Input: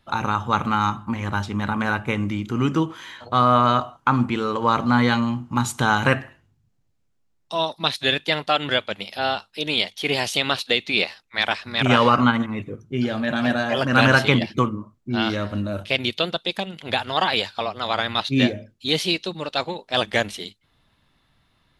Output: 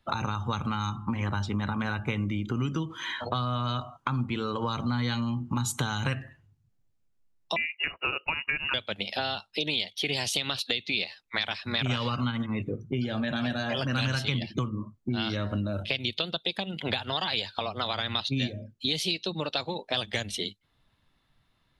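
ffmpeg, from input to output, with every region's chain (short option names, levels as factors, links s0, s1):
-filter_complex "[0:a]asettb=1/sr,asplit=3[s0][s1][s2];[s0]atrim=end=7.564[s3];[s1]atrim=start=7.56:end=8.74,asetpts=PTS-STARTPTS,afade=t=in:d=0.004:c=qsin,afade=t=out:st=1.176:d=0.004:c=qsin,agate=range=0.398:threshold=0.00447:ratio=16:release=100:detection=peak,acompressor=mode=upward:threshold=0.02:ratio=2.5:attack=3.2:release=140:knee=2.83:detection=peak,lowpass=f=2600:t=q:w=0.5098,lowpass=f=2600:t=q:w=0.6013,lowpass=f=2600:t=q:w=0.9,lowpass=f=2600:t=q:w=2.563,afreqshift=-3000[s4];[s2]atrim=start=8.736[s5];[s3][s4]acrossfade=d=0.004:c1=hsin:c2=qsin[s6];[s6][s5]acrossfade=d=0.004:c1=qsin:c2=hsin,acrossover=split=160|3000[s7][s8][s9];[s8]acompressor=threshold=0.0355:ratio=6[s10];[s7][s10][s9]amix=inputs=3:normalize=0,afftdn=nr=14:nf=-45,acompressor=threshold=0.0158:ratio=3,volume=2.24"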